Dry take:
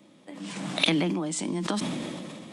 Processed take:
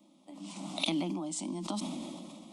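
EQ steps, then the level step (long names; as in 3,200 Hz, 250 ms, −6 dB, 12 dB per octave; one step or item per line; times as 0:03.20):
phaser with its sweep stopped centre 450 Hz, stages 6
−5.0 dB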